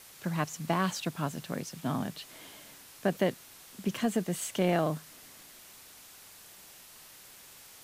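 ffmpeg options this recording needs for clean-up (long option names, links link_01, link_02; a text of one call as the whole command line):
ffmpeg -i in.wav -af "afwtdn=0.0028" out.wav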